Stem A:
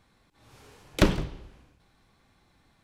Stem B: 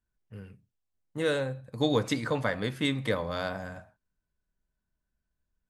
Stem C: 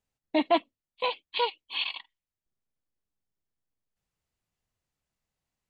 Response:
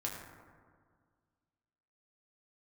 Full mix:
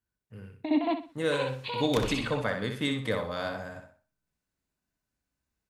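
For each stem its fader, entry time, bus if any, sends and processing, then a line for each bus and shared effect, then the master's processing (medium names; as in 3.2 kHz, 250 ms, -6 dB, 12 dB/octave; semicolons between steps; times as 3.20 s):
-3.5 dB, 0.95 s, bus A, no send, echo send -11.5 dB, none
-1.5 dB, 0.00 s, no bus, no send, echo send -6.5 dB, high-pass 61 Hz
-3.0 dB, 0.30 s, bus A, no send, echo send -5 dB, peaking EQ 280 Hz +13 dB 0.47 oct; band-stop 3.2 kHz, Q 7.9
bus A: 0.0 dB, bass shelf 410 Hz -9.5 dB; compression 10:1, threshold -33 dBFS, peak gain reduction 12 dB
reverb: none
echo: feedback delay 62 ms, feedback 30%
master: none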